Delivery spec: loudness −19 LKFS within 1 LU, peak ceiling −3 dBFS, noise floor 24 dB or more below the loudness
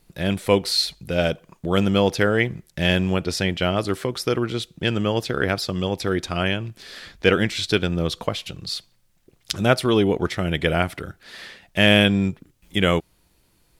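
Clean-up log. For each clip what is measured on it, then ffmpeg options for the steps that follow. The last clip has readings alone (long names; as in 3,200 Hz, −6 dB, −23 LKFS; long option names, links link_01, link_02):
integrated loudness −22.0 LKFS; sample peak −1.0 dBFS; target loudness −19.0 LKFS
→ -af "volume=3dB,alimiter=limit=-3dB:level=0:latency=1"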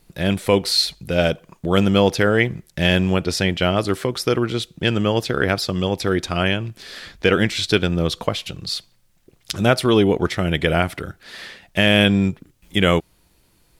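integrated loudness −19.5 LKFS; sample peak −3.0 dBFS; background noise floor −60 dBFS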